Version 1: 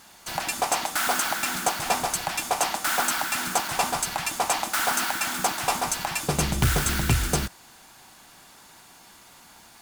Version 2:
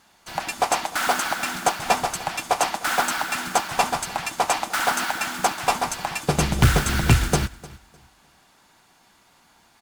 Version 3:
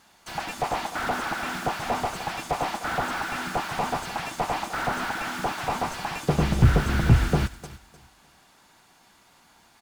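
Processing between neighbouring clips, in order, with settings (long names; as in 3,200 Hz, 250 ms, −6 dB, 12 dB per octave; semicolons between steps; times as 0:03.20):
high-shelf EQ 6,700 Hz −8.5 dB; repeating echo 303 ms, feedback 33%, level −14 dB; expander for the loud parts 1.5 to 1, over −42 dBFS; level +7 dB
slew-rate limiting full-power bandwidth 67 Hz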